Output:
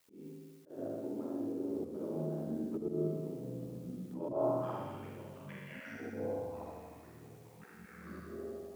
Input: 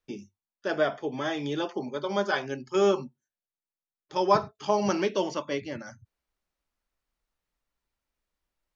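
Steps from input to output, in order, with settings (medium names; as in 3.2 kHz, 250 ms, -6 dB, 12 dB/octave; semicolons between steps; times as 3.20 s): low-pass that closes with the level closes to 460 Hz, closed at -26 dBFS; bass shelf 380 Hz -12 dB; flutter echo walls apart 6.9 m, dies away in 1.2 s; band-pass sweep 260 Hz -> 2.4 kHz, 4.00–4.96 s; word length cut 12-bit, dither triangular; ring modulator 42 Hz; flutter echo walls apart 11 m, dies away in 0.98 s; slow attack 176 ms; ever faster or slower copies 698 ms, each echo -4 st, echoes 3, each echo -6 dB; trim +3 dB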